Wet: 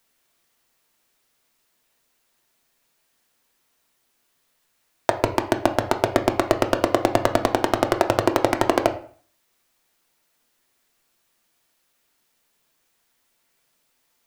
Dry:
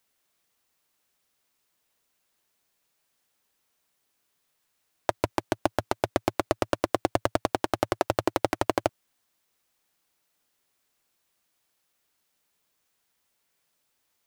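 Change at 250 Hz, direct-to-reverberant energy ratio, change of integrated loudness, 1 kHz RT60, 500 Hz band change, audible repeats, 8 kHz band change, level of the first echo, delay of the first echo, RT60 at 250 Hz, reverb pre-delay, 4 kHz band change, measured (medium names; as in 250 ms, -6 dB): +7.0 dB, 5.0 dB, +6.5 dB, 0.45 s, +7.0 dB, no echo, +5.5 dB, no echo, no echo, 0.50 s, 3 ms, +6.0 dB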